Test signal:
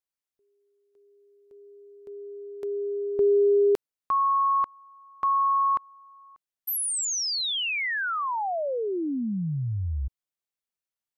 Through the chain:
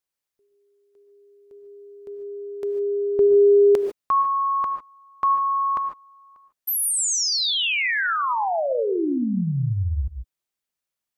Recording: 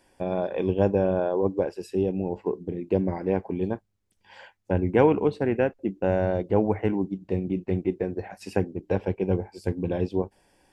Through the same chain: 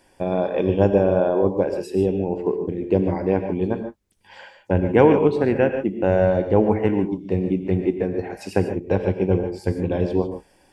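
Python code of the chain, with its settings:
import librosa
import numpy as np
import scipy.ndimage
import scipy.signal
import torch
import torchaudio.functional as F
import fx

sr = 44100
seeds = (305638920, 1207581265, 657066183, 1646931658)

y = fx.rev_gated(x, sr, seeds[0], gate_ms=170, shape='rising', drr_db=7.0)
y = F.gain(torch.from_numpy(y), 4.5).numpy()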